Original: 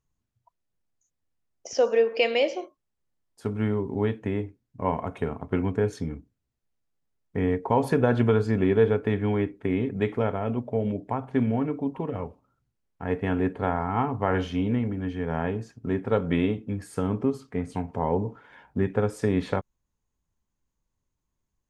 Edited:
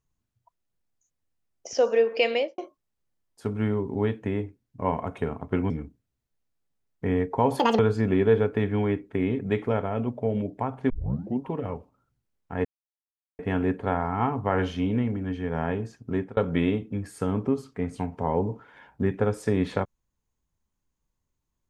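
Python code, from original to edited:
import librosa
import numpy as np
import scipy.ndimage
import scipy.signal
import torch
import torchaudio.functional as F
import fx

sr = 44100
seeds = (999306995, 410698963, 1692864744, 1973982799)

y = fx.studio_fade_out(x, sr, start_s=2.32, length_s=0.26)
y = fx.edit(y, sr, fx.cut(start_s=5.7, length_s=0.32),
    fx.speed_span(start_s=7.91, length_s=0.38, speed=1.91),
    fx.tape_start(start_s=11.4, length_s=0.51),
    fx.insert_silence(at_s=13.15, length_s=0.74),
    fx.fade_out_span(start_s=15.88, length_s=0.25, curve='qsin'), tone=tone)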